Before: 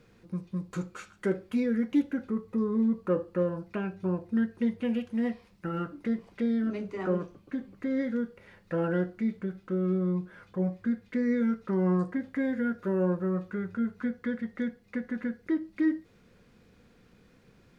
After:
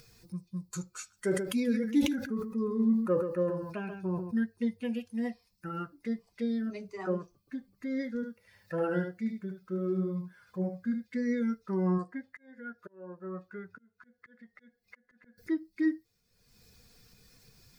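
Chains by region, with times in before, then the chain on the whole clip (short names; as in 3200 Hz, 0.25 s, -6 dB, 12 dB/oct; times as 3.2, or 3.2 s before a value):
1.14–4.43 echo 0.134 s -6.5 dB + sustainer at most 44 dB/s
8.15–11.18 HPF 48 Hz + echo 74 ms -4 dB
11.98–15.38 tone controls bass -6 dB, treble -6 dB + auto swell 0.522 s
whole clip: per-bin expansion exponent 1.5; tone controls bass -2 dB, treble +14 dB; upward compressor, threshold -45 dBFS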